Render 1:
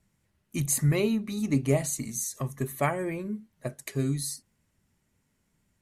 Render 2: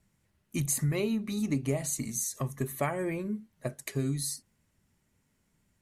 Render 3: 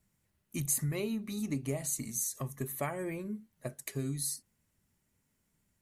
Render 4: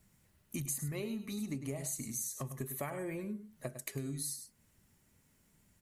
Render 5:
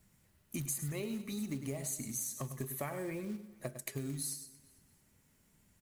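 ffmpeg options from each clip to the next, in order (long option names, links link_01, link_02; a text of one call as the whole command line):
ffmpeg -i in.wav -af "acompressor=threshold=-26dB:ratio=4" out.wav
ffmpeg -i in.wav -af "highshelf=frequency=10000:gain=10,volume=-5dB" out.wav
ffmpeg -i in.wav -af "aecho=1:1:101:0.266,acompressor=threshold=-49dB:ratio=2.5,volume=7dB" out.wav
ffmpeg -i in.wav -af "acrusher=bits=5:mode=log:mix=0:aa=0.000001,aecho=1:1:225|450|675:0.1|0.04|0.016" out.wav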